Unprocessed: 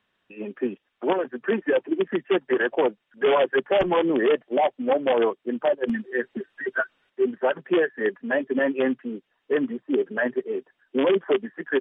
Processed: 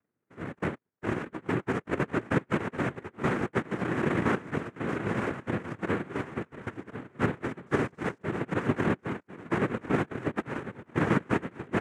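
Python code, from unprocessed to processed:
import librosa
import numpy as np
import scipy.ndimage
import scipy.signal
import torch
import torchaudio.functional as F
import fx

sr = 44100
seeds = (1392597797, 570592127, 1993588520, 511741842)

y = fx.bit_reversed(x, sr, seeds[0], block=64)
y = fx.brickwall_lowpass(y, sr, high_hz=1300.0)
y = fx.quant_companded(y, sr, bits=6, at=(7.65, 8.21), fade=0.02)
y = fx.echo_feedback(y, sr, ms=1048, feedback_pct=23, wet_db=-12.5)
y = fx.noise_vocoder(y, sr, seeds[1], bands=3)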